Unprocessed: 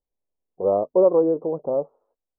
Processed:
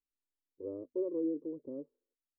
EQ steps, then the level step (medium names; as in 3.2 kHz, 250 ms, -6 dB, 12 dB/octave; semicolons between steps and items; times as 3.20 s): cascade formant filter i; static phaser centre 730 Hz, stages 6; 0.0 dB